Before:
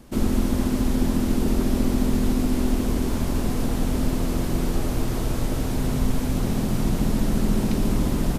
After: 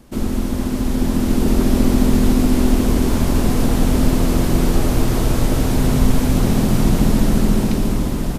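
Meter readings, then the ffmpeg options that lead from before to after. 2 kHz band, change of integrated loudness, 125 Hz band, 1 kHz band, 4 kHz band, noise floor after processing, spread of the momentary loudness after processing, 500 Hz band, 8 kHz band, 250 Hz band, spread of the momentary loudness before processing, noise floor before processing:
+7.0 dB, +6.5 dB, +6.5 dB, +7.0 dB, +6.5 dB, −21 dBFS, 5 LU, +6.5 dB, +7.0 dB, +6.5 dB, 3 LU, −26 dBFS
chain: -af "dynaudnorm=framelen=270:gausssize=9:maxgain=9dB,volume=1dB"

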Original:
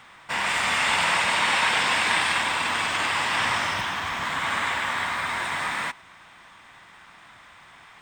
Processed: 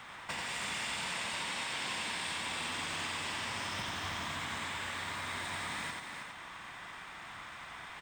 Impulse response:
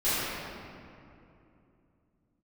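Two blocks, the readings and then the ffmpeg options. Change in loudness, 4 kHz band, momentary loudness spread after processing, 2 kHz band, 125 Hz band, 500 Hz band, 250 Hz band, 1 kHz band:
−14.0 dB, −11.0 dB, 10 LU, −14.0 dB, −7.0 dB, −12.5 dB, −8.5 dB, −15.0 dB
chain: -filter_complex "[0:a]acompressor=threshold=-33dB:ratio=6,asplit=2[link_01][link_02];[link_02]aecho=0:1:87:0.631[link_03];[link_01][link_03]amix=inputs=2:normalize=0,acrossover=split=480|3000[link_04][link_05][link_06];[link_05]acompressor=threshold=-41dB:ratio=6[link_07];[link_04][link_07][link_06]amix=inputs=3:normalize=0,asplit=2[link_08][link_09];[link_09]aecho=0:1:320:0.473[link_10];[link_08][link_10]amix=inputs=2:normalize=0"

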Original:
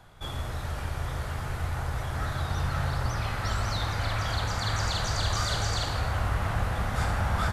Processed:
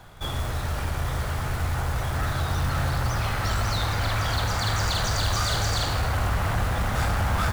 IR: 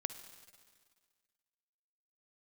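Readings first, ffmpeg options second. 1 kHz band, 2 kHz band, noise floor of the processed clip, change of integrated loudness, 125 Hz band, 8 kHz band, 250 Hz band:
+3.5 dB, +4.0 dB, −29 dBFS, +4.0 dB, +3.5 dB, +5.0 dB, +4.0 dB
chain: -af "asoftclip=type=tanh:threshold=-24.5dB,acrusher=bits=4:mode=log:mix=0:aa=0.000001,volume=6dB"

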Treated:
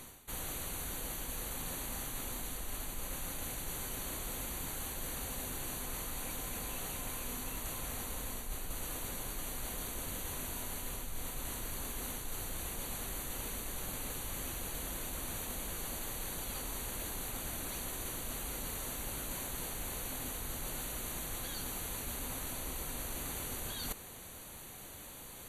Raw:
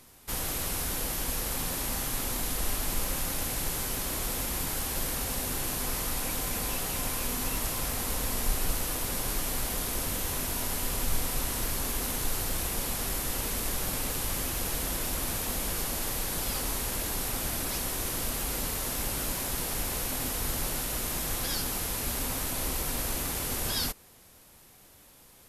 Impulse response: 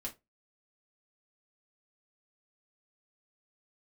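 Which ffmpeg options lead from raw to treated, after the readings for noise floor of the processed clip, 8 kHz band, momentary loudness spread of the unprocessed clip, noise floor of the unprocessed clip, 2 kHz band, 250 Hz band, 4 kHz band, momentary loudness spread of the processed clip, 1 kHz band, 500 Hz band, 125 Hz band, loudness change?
−49 dBFS, −8.5 dB, 0 LU, −56 dBFS, −8.5 dB, −8.5 dB, −10.0 dB, 2 LU, −8.5 dB, −8.5 dB, −9.0 dB, −9.0 dB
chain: -af "areverse,acompressor=threshold=-45dB:ratio=6,areverse,asuperstop=centerf=5200:order=20:qfactor=4.7,volume=6.5dB"

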